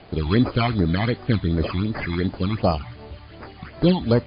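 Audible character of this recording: aliases and images of a low sample rate 3.7 kHz, jitter 0%; phasing stages 12, 2.7 Hz, lowest notch 460–3300 Hz; a quantiser's noise floor 8-bit, dither none; MP3

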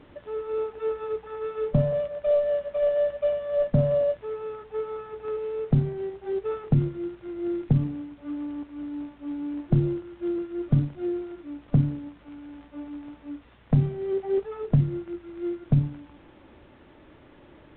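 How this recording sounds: µ-law

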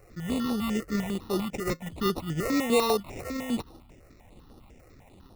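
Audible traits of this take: aliases and images of a low sample rate 1.6 kHz, jitter 0%; notches that jump at a steady rate 10 Hz 930–7500 Hz

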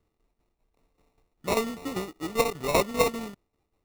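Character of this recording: a buzz of ramps at a fixed pitch in blocks of 16 samples; tremolo saw down 5.1 Hz, depth 70%; aliases and images of a low sample rate 1.6 kHz, jitter 0%

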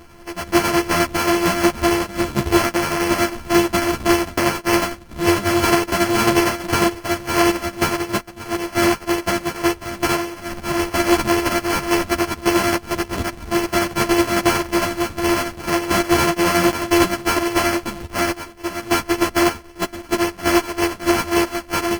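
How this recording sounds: a buzz of ramps at a fixed pitch in blocks of 128 samples; tremolo saw down 11 Hz, depth 50%; aliases and images of a low sample rate 3.7 kHz, jitter 0%; a shimmering, thickened sound

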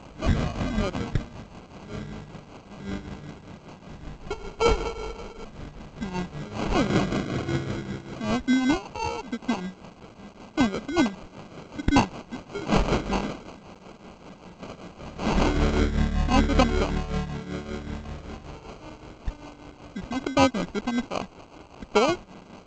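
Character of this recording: a quantiser's noise floor 8-bit, dither triangular; tremolo triangle 5.2 Hz, depth 70%; aliases and images of a low sample rate 1.8 kHz, jitter 0%; G.722

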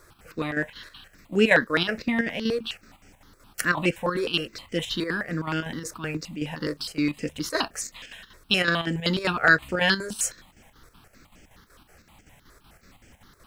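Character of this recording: chopped level 5.3 Hz, depth 60%, duty 70%; a quantiser's noise floor 12-bit, dither none; notches that jump at a steady rate 9.6 Hz 800–3900 Hz

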